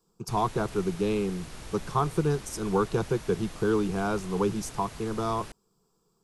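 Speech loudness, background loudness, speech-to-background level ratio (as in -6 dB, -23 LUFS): -29.5 LUFS, -44.0 LUFS, 14.5 dB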